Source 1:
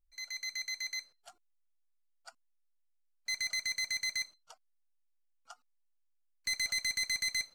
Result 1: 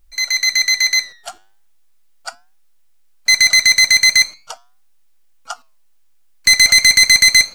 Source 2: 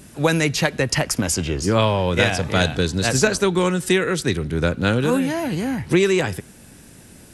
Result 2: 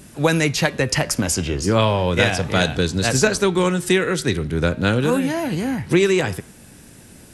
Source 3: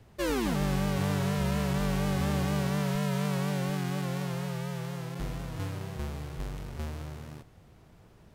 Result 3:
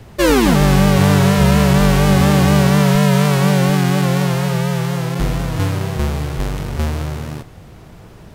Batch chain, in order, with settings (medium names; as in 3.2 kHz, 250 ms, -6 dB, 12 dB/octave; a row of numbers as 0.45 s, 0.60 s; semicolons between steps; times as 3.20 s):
flange 0.38 Hz, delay 5.4 ms, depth 4.8 ms, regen -89%; peak normalisation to -3 dBFS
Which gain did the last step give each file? +28.5 dB, +5.0 dB, +21.5 dB